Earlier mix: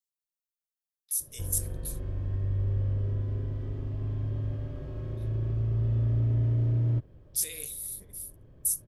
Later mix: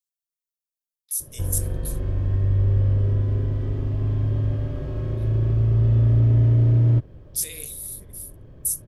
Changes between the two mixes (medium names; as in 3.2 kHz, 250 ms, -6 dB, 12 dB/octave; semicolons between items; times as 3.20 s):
speech +3.0 dB; background +9.0 dB